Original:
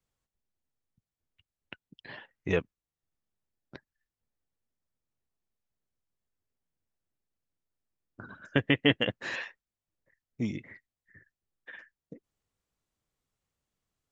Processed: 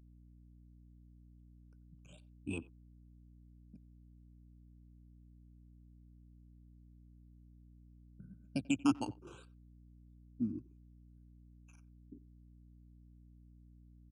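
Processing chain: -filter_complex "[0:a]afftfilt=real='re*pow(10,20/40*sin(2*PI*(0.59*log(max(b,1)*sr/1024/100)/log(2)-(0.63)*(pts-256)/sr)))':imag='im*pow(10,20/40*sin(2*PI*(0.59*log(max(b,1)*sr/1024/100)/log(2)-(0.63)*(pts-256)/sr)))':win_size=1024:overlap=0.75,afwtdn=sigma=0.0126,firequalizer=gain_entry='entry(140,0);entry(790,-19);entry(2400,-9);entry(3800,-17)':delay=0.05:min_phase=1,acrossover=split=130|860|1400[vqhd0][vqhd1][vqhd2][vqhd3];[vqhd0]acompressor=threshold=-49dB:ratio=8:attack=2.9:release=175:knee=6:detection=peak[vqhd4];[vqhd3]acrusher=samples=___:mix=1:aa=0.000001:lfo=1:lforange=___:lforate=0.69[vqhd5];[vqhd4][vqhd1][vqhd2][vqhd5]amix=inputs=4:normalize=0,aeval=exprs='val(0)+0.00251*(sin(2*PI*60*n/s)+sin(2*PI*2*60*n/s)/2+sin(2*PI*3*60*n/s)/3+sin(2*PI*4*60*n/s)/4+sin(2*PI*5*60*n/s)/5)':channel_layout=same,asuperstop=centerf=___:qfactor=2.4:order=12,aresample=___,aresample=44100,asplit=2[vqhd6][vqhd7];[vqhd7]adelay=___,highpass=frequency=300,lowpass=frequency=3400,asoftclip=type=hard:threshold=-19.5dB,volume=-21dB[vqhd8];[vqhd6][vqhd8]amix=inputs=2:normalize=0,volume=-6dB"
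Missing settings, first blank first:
8, 8, 1900, 22050, 90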